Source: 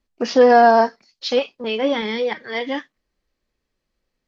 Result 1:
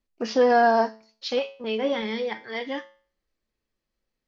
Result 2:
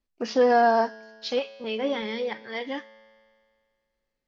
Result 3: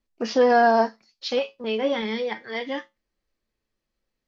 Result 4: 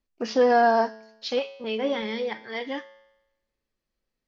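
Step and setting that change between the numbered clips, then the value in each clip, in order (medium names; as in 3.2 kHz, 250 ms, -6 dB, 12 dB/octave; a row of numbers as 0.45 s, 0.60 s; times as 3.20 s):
feedback comb, decay: 0.44 s, 2 s, 0.2 s, 0.93 s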